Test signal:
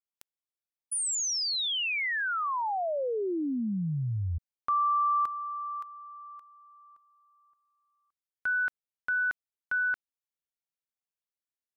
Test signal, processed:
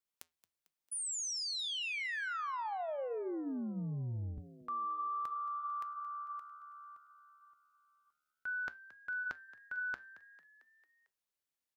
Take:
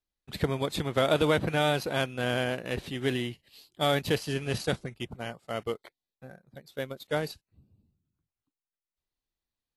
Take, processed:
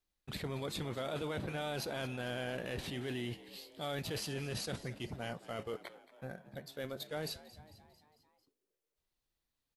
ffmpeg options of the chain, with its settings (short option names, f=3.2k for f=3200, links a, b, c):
-filter_complex "[0:a]areverse,acompressor=threshold=-42dB:ratio=6:attack=7.7:release=22:knee=1:detection=rms,areverse,flanger=delay=5.3:depth=6:regen=-83:speed=0.22:shape=triangular,asplit=6[a][b][c][d][e][f];[b]adelay=224,afreqshift=73,volume=-17.5dB[g];[c]adelay=448,afreqshift=146,volume=-22.2dB[h];[d]adelay=672,afreqshift=219,volume=-27dB[i];[e]adelay=896,afreqshift=292,volume=-31.7dB[j];[f]adelay=1120,afreqshift=365,volume=-36.4dB[k];[a][g][h][i][j][k]amix=inputs=6:normalize=0,volume=7dB"